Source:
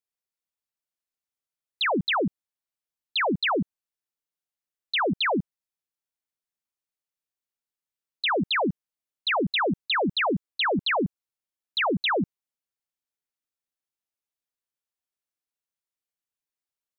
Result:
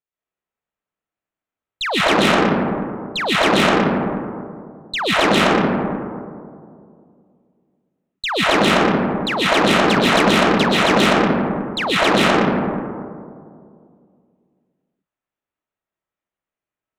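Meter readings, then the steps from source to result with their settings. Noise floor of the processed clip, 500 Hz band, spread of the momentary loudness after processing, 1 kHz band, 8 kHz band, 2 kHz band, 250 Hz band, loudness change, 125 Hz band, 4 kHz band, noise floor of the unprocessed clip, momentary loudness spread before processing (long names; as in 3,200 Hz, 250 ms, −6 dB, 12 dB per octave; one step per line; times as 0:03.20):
below −85 dBFS, +12.0 dB, 13 LU, +11.0 dB, can't be measured, +9.5 dB, +12.5 dB, +9.0 dB, +12.0 dB, +9.0 dB, below −85 dBFS, 8 LU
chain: adaptive Wiener filter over 9 samples
comb and all-pass reverb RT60 2.3 s, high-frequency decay 0.3×, pre-delay 95 ms, DRR −8 dB
harmonic generator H 6 −13 dB, 8 −14 dB, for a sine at −5 dBFS
level +2 dB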